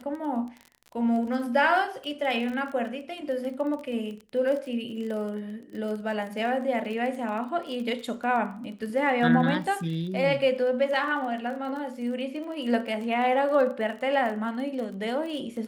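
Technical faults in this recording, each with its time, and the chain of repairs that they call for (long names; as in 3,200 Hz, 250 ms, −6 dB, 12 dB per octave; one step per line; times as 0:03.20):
surface crackle 25 per second −34 dBFS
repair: click removal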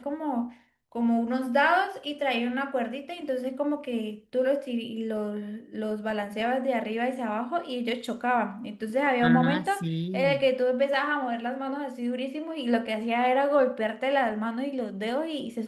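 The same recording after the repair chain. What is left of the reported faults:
none of them is left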